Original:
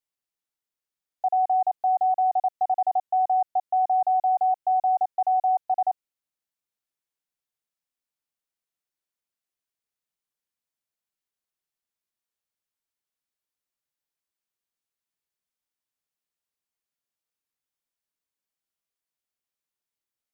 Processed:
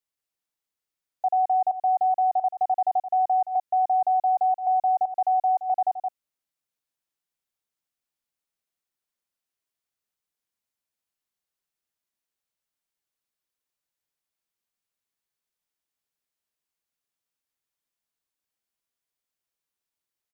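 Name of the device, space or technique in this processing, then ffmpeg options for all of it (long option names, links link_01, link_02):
ducked delay: -filter_complex "[0:a]asplit=3[link_01][link_02][link_03];[link_02]adelay=171,volume=-4dB[link_04];[link_03]apad=whole_len=904144[link_05];[link_04][link_05]sidechaincompress=threshold=-33dB:ratio=10:attack=8.2:release=169[link_06];[link_01][link_06]amix=inputs=2:normalize=0"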